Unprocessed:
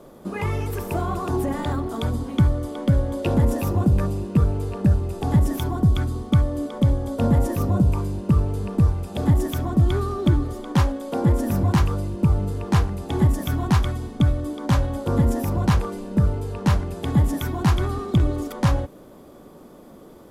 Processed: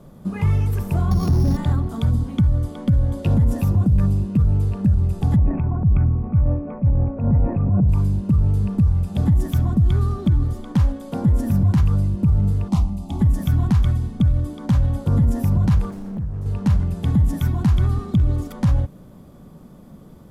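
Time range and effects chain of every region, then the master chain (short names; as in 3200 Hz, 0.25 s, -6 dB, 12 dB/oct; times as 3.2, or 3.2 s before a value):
1.11–1.57 sample sorter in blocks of 8 samples + low shelf 440 Hz +9.5 dB + hard clip -12.5 dBFS
5.36–7.89 bell 1800 Hz -8.5 dB 0.5 oct + transient shaper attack -9 dB, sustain +8 dB + rippled Chebyshev low-pass 2600 Hz, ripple 3 dB
12.68–13.21 fixed phaser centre 440 Hz, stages 6 + Doppler distortion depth 0.13 ms
15.9–16.46 bell 3400 Hz -7.5 dB 0.37 oct + compressor 10:1, threshold -29 dBFS + Doppler distortion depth 0.85 ms
whole clip: resonant low shelf 240 Hz +10.5 dB, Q 1.5; maximiser +5.5 dB; gain -9 dB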